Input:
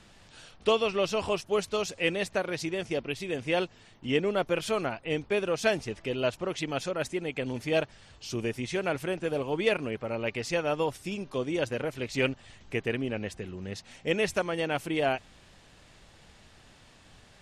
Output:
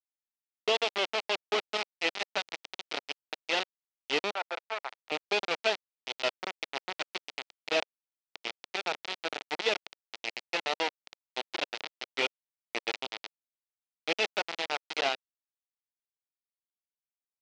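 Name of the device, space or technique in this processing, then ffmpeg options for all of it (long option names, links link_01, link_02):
hand-held game console: -filter_complex "[0:a]acrusher=bits=3:mix=0:aa=0.000001,highpass=460,equalizer=frequency=550:width_type=q:width=4:gain=-5,equalizer=frequency=1100:width_type=q:width=4:gain=-7,equalizer=frequency=1600:width_type=q:width=4:gain=-7,lowpass=frequency=4800:width=0.5412,lowpass=frequency=4800:width=1.3066,asettb=1/sr,asplit=3[link_01][link_02][link_03];[link_01]atrim=end=4.334[link_04];[link_02]atrim=start=4.33:end=5.12,asetpts=PTS-STARTPTS,afade=type=in:duration=0.004:curve=qsin,afade=type=out:start_time=0.786:duration=0.004:curve=qsin,acrossover=split=570 2200:gain=0.112 1 0.251[link_05][link_06][link_07];[link_05][link_06][link_07]amix=inputs=3:normalize=0[link_08];[link_03]atrim=start=5.116[link_09];[link_04][link_08]acrossfade=duration=0.004:curve1=hsin:curve2=qsin[link_10];[link_10][link_09]acrossfade=duration=0.004:curve1=qsin:curve2=hsin"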